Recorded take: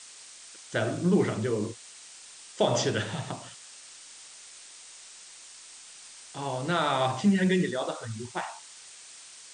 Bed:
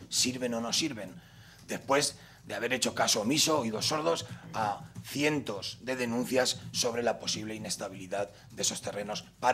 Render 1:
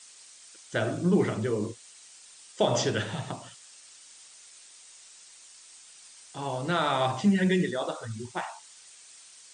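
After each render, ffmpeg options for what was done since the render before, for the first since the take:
ffmpeg -i in.wav -af "afftdn=noise_reduction=6:noise_floor=-49" out.wav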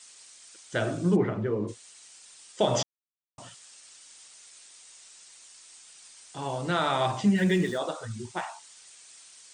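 ffmpeg -i in.wav -filter_complex "[0:a]asplit=3[link_01][link_02][link_03];[link_01]afade=type=out:start_time=1.15:duration=0.02[link_04];[link_02]lowpass=1800,afade=type=in:start_time=1.15:duration=0.02,afade=type=out:start_time=1.67:duration=0.02[link_05];[link_03]afade=type=in:start_time=1.67:duration=0.02[link_06];[link_04][link_05][link_06]amix=inputs=3:normalize=0,asettb=1/sr,asplit=3[link_07][link_08][link_09];[link_07]atrim=end=7.364[link_10];[link_08]atrim=start=7.36:end=7.78,asetpts=PTS-STARTPTS,afade=type=in:duration=0.004:curve=qsin,afade=type=out:start_time=0.416:duration=0.004:curve=qsin,aeval=exprs='val(0)+0.5*0.0075*sgn(val(0))':channel_layout=same[link_11];[link_09]atrim=start=7.776[link_12];[link_10][link_11]acrossfade=duration=0.004:curve1=hsin:curve2=qsin[link_13];[link_13][link_12]acrossfade=duration=0.004:curve1=qsin:curve2=hsin,asplit=3[link_14][link_15][link_16];[link_14]atrim=end=2.83,asetpts=PTS-STARTPTS,afade=type=out:start_time=2.826:duration=0.004:curve=hsin[link_17];[link_15]atrim=start=2.83:end=3.38,asetpts=PTS-STARTPTS,volume=0[link_18];[link_16]atrim=start=3.38,asetpts=PTS-STARTPTS,afade=type=in:duration=0.004:curve=hsin[link_19];[link_17][link_18][link_19]concat=n=3:v=0:a=1" out.wav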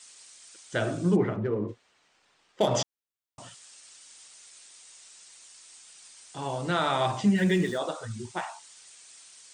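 ffmpeg -i in.wav -filter_complex "[0:a]asettb=1/sr,asplit=3[link_01][link_02][link_03];[link_01]atrim=end=1.364[link_04];[link_02]atrim=start=1.36:end=2.75,asetpts=PTS-STARTPTS,afade=type=in:duration=0.004:curve=qsin,afade=type=out:start_time=1.386:duration=0.004:curve=qsin,adynamicsmooth=sensitivity=4.5:basefreq=1900[link_05];[link_03]atrim=start=2.746[link_06];[link_04][link_05]acrossfade=duration=0.004:curve1=hsin:curve2=qsin[link_07];[link_07][link_06]acrossfade=duration=0.004:curve1=qsin:curve2=hsin" out.wav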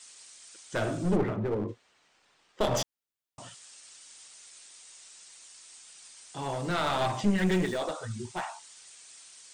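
ffmpeg -i in.wav -af "aeval=exprs='clip(val(0),-1,0.0376)':channel_layout=same" out.wav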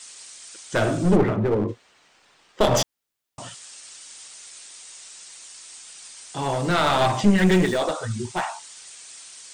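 ffmpeg -i in.wav -af "volume=8.5dB" out.wav

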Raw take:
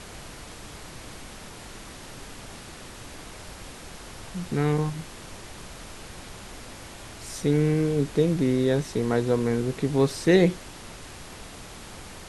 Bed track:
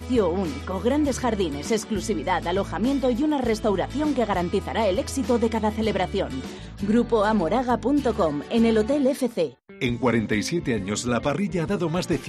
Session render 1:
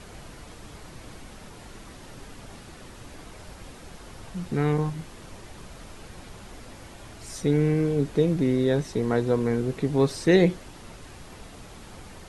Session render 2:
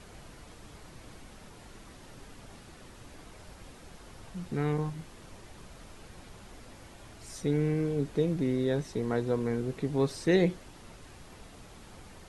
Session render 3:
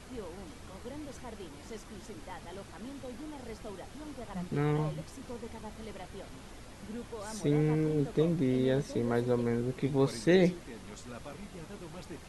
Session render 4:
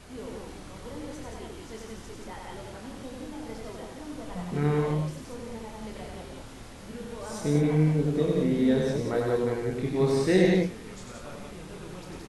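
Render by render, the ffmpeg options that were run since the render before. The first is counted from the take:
ffmpeg -i in.wav -af "afftdn=noise_reduction=6:noise_floor=-43" out.wav
ffmpeg -i in.wav -af "volume=-6dB" out.wav
ffmpeg -i in.wav -i bed.wav -filter_complex "[1:a]volume=-22dB[link_01];[0:a][link_01]amix=inputs=2:normalize=0" out.wav
ffmpeg -i in.wav -filter_complex "[0:a]asplit=2[link_01][link_02];[link_02]adelay=27,volume=-5.5dB[link_03];[link_01][link_03]amix=inputs=2:normalize=0,aecho=1:1:96.21|174.9:0.708|0.708" out.wav

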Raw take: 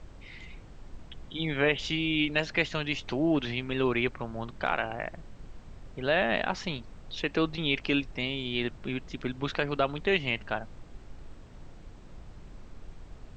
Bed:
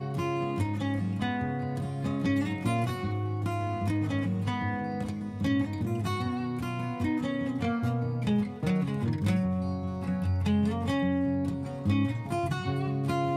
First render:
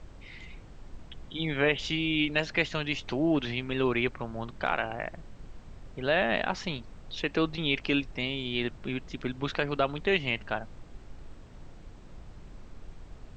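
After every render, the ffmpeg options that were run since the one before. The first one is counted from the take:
ffmpeg -i in.wav -af anull out.wav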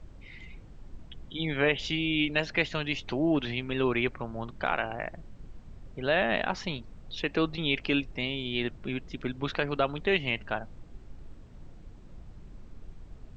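ffmpeg -i in.wav -af "afftdn=noise_reduction=6:noise_floor=-49" out.wav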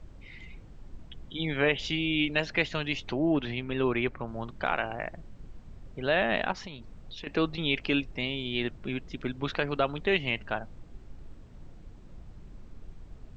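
ffmpeg -i in.wav -filter_complex "[0:a]asettb=1/sr,asplit=3[link_01][link_02][link_03];[link_01]atrim=end=3.114[link_04];[link_02]atrim=start=3.11:end=4.28,asetpts=PTS-STARTPTS,afade=type=in:duration=0.004:curve=qsin,afade=type=out:start_time=1.166:duration=0.004:curve=qsin,highshelf=frequency=4000:gain=-8[link_05];[link_03]atrim=start=4.276[link_06];[link_04][link_05]acrossfade=duration=0.004:curve1=hsin:curve2=qsin[link_07];[link_07][link_06]acrossfade=duration=0.004:curve1=qsin:curve2=hsin,asettb=1/sr,asplit=3[link_08][link_09][link_10];[link_08]atrim=end=6.524[link_11];[link_09]atrim=start=6.52:end=7.27,asetpts=PTS-STARTPTS,afade=type=in:duration=0.004:curve=qsin,afade=type=out:start_time=0.746:duration=0.004:curve=qsin,acompressor=threshold=-38dB:ratio=5:attack=3.2:release=140:knee=1:detection=peak[link_12];[link_10]atrim=start=7.266[link_13];[link_11][link_12]acrossfade=duration=0.004:curve1=hsin:curve2=qsin[link_14];[link_14][link_13]acrossfade=duration=0.004:curve1=qsin:curve2=hsin" out.wav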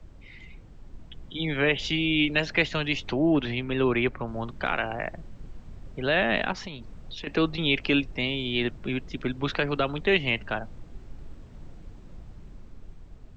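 ffmpeg -i in.wav -filter_complex "[0:a]acrossover=split=210|480|1200[link_01][link_02][link_03][link_04];[link_03]alimiter=level_in=6.5dB:limit=-24dB:level=0:latency=1,volume=-6.5dB[link_05];[link_01][link_02][link_05][link_04]amix=inputs=4:normalize=0,dynaudnorm=framelen=310:gausssize=9:maxgain=4dB" out.wav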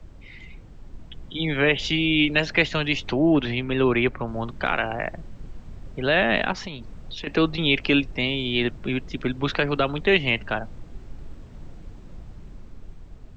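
ffmpeg -i in.wav -af "volume=3.5dB" out.wav

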